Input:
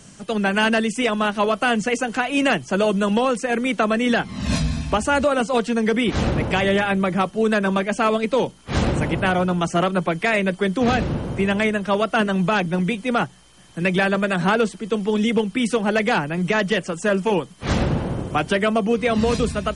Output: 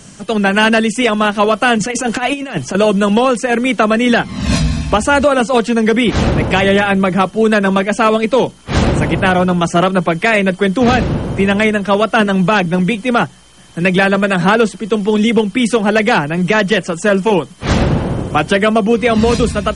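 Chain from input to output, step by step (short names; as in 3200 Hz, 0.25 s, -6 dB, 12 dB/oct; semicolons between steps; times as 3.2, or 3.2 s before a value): 1.78–2.75 negative-ratio compressor -24 dBFS, ratio -0.5; gain +7.5 dB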